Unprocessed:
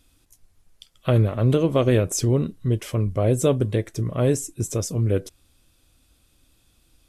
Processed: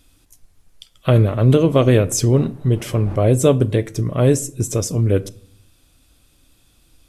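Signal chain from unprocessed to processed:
0:02.33–0:03.15: wind on the microphone 500 Hz −38 dBFS
rectangular room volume 850 cubic metres, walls furnished, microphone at 0.35 metres
level +5 dB

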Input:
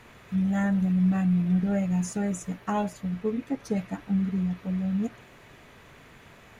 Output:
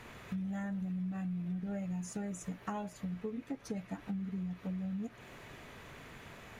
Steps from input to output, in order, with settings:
downward compressor 6 to 1, threshold −37 dBFS, peak gain reduction 16 dB

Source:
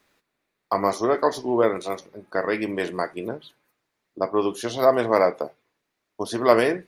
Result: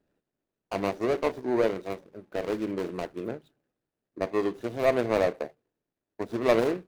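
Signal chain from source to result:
running median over 41 samples
level −2.5 dB

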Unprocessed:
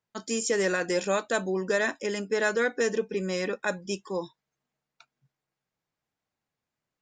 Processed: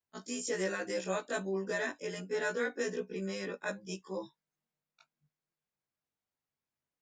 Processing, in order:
every overlapping window played backwards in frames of 42 ms
level −5 dB

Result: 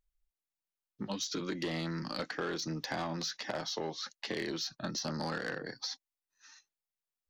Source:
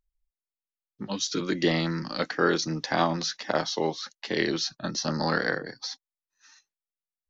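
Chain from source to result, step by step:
soft clipping −20 dBFS, distortion −12 dB
downward compressor, threshold −32 dBFS, peak gain reduction 8.5 dB
level −1.5 dB

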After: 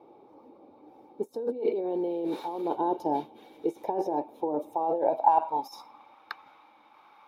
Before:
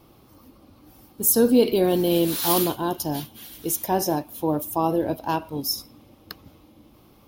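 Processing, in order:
low-shelf EQ 160 Hz −11.5 dB
compressor whose output falls as the input rises −28 dBFS, ratio −1
hollow resonant body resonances 860/2,300/3,700 Hz, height 15 dB, ringing for 30 ms
band-pass filter sweep 430 Hz → 1,400 Hz, 0:04.58–0:06.25
level +2.5 dB

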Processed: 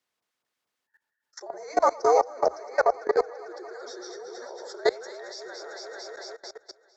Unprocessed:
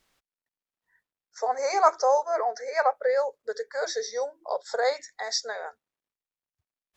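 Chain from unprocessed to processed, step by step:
high-pass filter 300 Hz 12 dB per octave
delay that swaps between a low-pass and a high-pass 112 ms, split 1,200 Hz, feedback 86%, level −6 dB
output level in coarse steps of 22 dB
frequency shifter −82 Hz
level +4 dB

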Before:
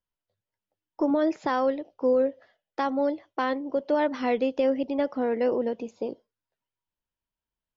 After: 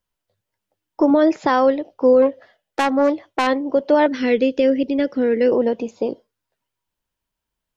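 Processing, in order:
0:02.22–0:03.47: phase distortion by the signal itself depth 0.16 ms
0:04.06–0:05.52: flat-topped bell 890 Hz −13.5 dB 1.2 octaves
level +9 dB

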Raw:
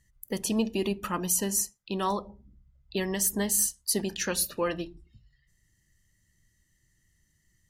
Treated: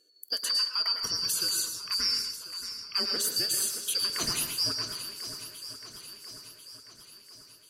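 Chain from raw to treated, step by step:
band-splitting scrambler in four parts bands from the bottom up 2341
brickwall limiter −19 dBFS, peak gain reduction 6 dB
feedback echo with a long and a short gap by turns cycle 1,041 ms, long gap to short 1.5 to 1, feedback 49%, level −12 dB
dense smooth reverb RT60 0.75 s, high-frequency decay 0.5×, pre-delay 95 ms, DRR 4.5 dB

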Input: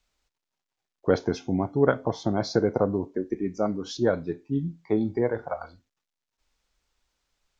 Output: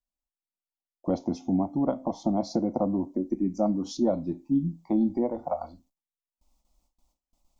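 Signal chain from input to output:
in parallel at +3 dB: downward compressor, threshold −29 dBFS, peak gain reduction 13.5 dB
on the sum: parametric band 3,100 Hz −12.5 dB 2.6 octaves
speech leveller 2 s
noise gate with hold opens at −58 dBFS
phaser with its sweep stopped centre 430 Hz, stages 6

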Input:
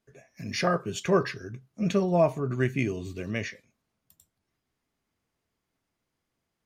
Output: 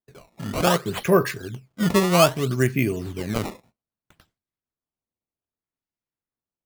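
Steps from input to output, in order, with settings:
noise gate with hold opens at −51 dBFS
sample-and-hold swept by an LFO 16×, swing 160% 0.63 Hz
level +5.5 dB

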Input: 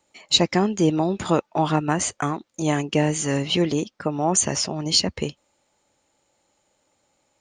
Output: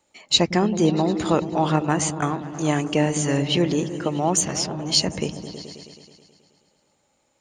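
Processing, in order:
on a send: echo whose low-pass opens from repeat to repeat 107 ms, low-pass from 200 Hz, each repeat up 1 octave, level −6 dB
0:04.35–0:04.96: on the sum: saturating transformer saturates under 1,700 Hz

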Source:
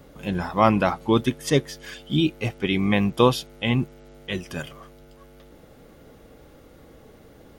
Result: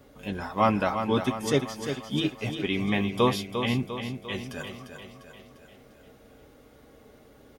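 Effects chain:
low-shelf EQ 130 Hz −5 dB
notch comb filter 170 Hz
on a send: repeating echo 349 ms, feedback 53%, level −8 dB
on the sum: level −3 dB

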